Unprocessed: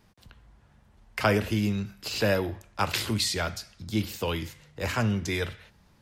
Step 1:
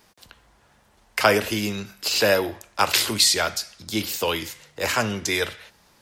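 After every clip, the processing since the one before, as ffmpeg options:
-af "bass=f=250:g=-13,treble=f=4k:g=5,volume=7dB"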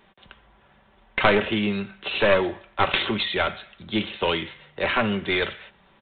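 -af "aecho=1:1:5.2:0.39,aresample=8000,aeval=exprs='clip(val(0),-1,0.0841)':c=same,aresample=44100,volume=1.5dB"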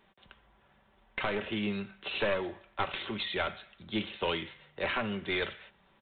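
-af "alimiter=limit=-10dB:level=0:latency=1:release=382,volume=-8dB"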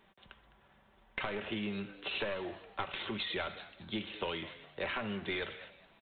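-filter_complex "[0:a]acompressor=threshold=-34dB:ratio=4,asplit=4[a][b][c][d];[b]adelay=208,afreqshift=98,volume=-17dB[e];[c]adelay=416,afreqshift=196,volume=-26.1dB[f];[d]adelay=624,afreqshift=294,volume=-35.2dB[g];[a][e][f][g]amix=inputs=4:normalize=0"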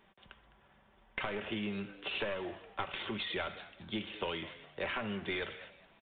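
-af "aresample=8000,aresample=44100"

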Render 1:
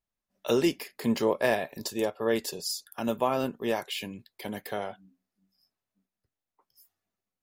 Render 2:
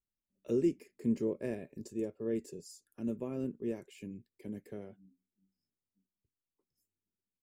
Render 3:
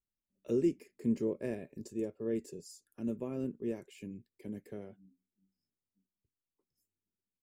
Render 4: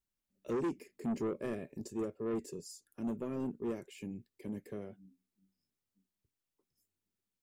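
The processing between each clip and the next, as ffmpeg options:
-af "firequalizer=gain_entry='entry(370,0);entry(760,-23);entry(2400,-14);entry(3400,-26);entry(7500,-9);entry(12000,-22)':delay=0.05:min_phase=1,volume=-4dB"
-af anull
-af "asoftclip=type=tanh:threshold=-33dB,volume=2.5dB"

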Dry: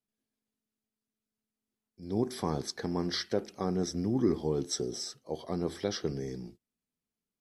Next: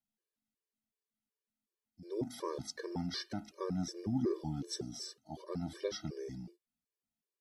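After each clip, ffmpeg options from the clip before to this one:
-af "afftfilt=real='re*gt(sin(2*PI*2.7*pts/sr)*(1-2*mod(floor(b*sr/1024/310),2)),0)':imag='im*gt(sin(2*PI*2.7*pts/sr)*(1-2*mod(floor(b*sr/1024/310),2)),0)':win_size=1024:overlap=0.75,volume=-3dB"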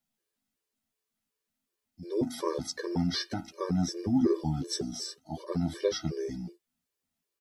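-filter_complex "[0:a]asplit=2[a][b];[b]adelay=12,volume=-5dB[c];[a][c]amix=inputs=2:normalize=0,volume=6.5dB"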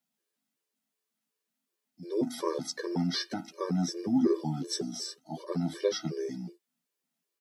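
-af "highpass=f=150:w=0.5412,highpass=f=150:w=1.3066"

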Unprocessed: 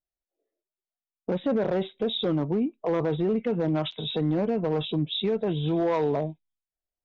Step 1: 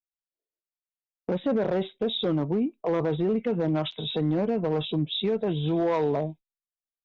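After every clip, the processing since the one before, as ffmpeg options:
-af "agate=range=-17dB:threshold=-43dB:ratio=16:detection=peak"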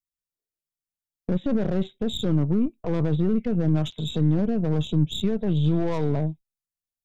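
-af "aeval=exprs='0.158*(cos(1*acos(clip(val(0)/0.158,-1,1)))-cos(1*PI/2))+0.01*(cos(4*acos(clip(val(0)/0.158,-1,1)))-cos(4*PI/2))+0.00316*(cos(7*acos(clip(val(0)/0.158,-1,1)))-cos(7*PI/2))+0.00316*(cos(8*acos(clip(val(0)/0.158,-1,1)))-cos(8*PI/2))':c=same,bass=f=250:g=15,treble=f=4k:g=8,volume=-5dB"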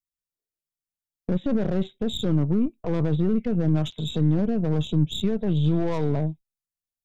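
-af anull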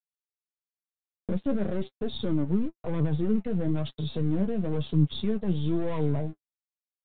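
-af "aresample=8000,aeval=exprs='sgn(val(0))*max(abs(val(0))-0.00447,0)':c=same,aresample=44100,flanger=delay=6.6:depth=4.4:regen=34:speed=1:shape=triangular"

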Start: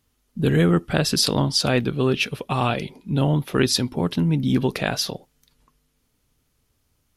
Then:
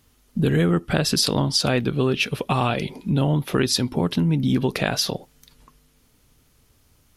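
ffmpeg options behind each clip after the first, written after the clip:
-af "acompressor=threshold=-31dB:ratio=2.5,volume=9dB"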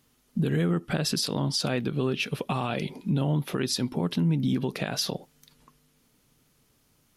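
-af "lowshelf=f=110:t=q:w=1.5:g=-7.5,alimiter=limit=-12.5dB:level=0:latency=1:release=94,volume=-4.5dB"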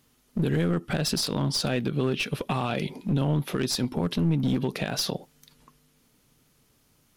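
-af "aeval=exprs='clip(val(0),-1,0.0501)':c=same,volume=1.5dB"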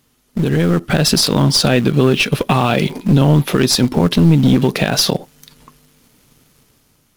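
-filter_complex "[0:a]dynaudnorm=f=210:g=7:m=5.5dB,asplit=2[a][b];[b]acrusher=bits=6:dc=4:mix=0:aa=0.000001,volume=-8dB[c];[a][c]amix=inputs=2:normalize=0,volume=5dB"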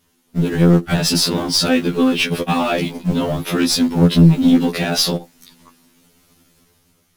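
-filter_complex "[0:a]asplit=2[a][b];[b]asoftclip=type=hard:threshold=-11.5dB,volume=-7dB[c];[a][c]amix=inputs=2:normalize=0,afftfilt=real='re*2*eq(mod(b,4),0)':imag='im*2*eq(mod(b,4),0)':win_size=2048:overlap=0.75,volume=-3dB"

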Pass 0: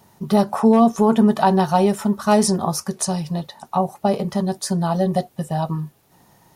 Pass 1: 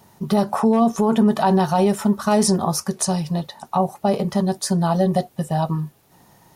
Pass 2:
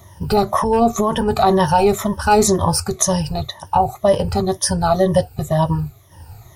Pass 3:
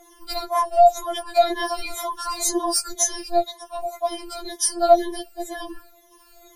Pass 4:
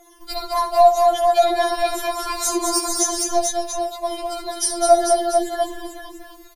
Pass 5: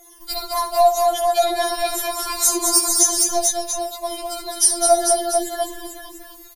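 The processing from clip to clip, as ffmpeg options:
-af "alimiter=limit=-10dB:level=0:latency=1:release=31,volume=1.5dB"
-af "afftfilt=real='re*pow(10,15/40*sin(2*PI*(1.2*log(max(b,1)*sr/1024/100)/log(2)-(-2)*(pts-256)/sr)))':imag='im*pow(10,15/40*sin(2*PI*(1.2*log(max(b,1)*sr/1024/100)/log(2)-(-2)*(pts-256)/sr)))':win_size=1024:overlap=0.75,lowshelf=f=130:t=q:w=3:g=13.5,volume=3dB"
-af "afftfilt=real='re*4*eq(mod(b,16),0)':imag='im*4*eq(mod(b,16),0)':win_size=2048:overlap=0.75"
-af "aecho=1:1:66|207|273|330|444|691:0.299|0.562|0.188|0.1|0.596|0.299"
-af "crystalizer=i=2:c=0,volume=-2.5dB"

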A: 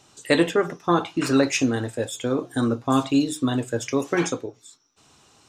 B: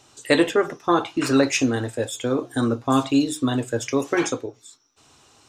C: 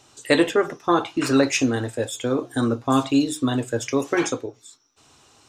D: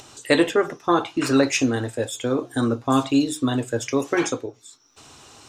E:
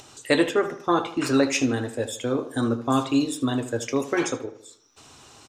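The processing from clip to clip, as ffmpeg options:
-af "equalizer=f=180:t=o:w=0.21:g=-14.5,volume=1.5dB"
-af anull
-af "acompressor=mode=upward:threshold=-38dB:ratio=2.5"
-filter_complex "[0:a]asplit=2[a][b];[b]adelay=77,lowpass=f=3.3k:p=1,volume=-12.5dB,asplit=2[c][d];[d]adelay=77,lowpass=f=3.3k:p=1,volume=0.47,asplit=2[e][f];[f]adelay=77,lowpass=f=3.3k:p=1,volume=0.47,asplit=2[g][h];[h]adelay=77,lowpass=f=3.3k:p=1,volume=0.47,asplit=2[i][j];[j]adelay=77,lowpass=f=3.3k:p=1,volume=0.47[k];[a][c][e][g][i][k]amix=inputs=6:normalize=0,volume=-2.5dB"

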